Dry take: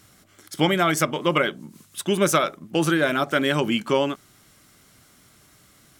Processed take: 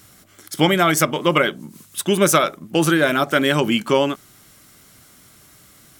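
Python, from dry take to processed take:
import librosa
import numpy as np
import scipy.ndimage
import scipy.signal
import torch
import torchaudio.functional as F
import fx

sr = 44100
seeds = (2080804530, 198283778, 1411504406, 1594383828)

y = fx.high_shelf(x, sr, hz=11000.0, db=7.5)
y = y * 10.0 ** (4.0 / 20.0)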